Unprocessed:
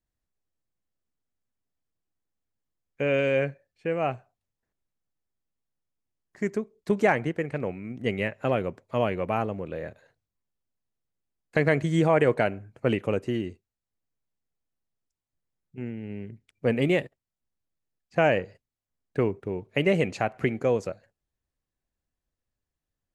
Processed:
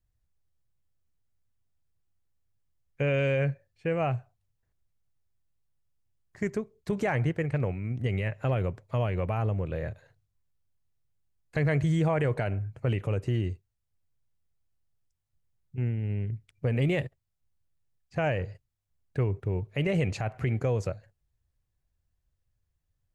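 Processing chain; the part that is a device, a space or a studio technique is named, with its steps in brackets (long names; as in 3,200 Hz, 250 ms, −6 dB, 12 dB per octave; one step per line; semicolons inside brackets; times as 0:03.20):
car stereo with a boomy subwoofer (low shelf with overshoot 160 Hz +10 dB, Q 1.5; brickwall limiter −19 dBFS, peak gain reduction 9.5 dB)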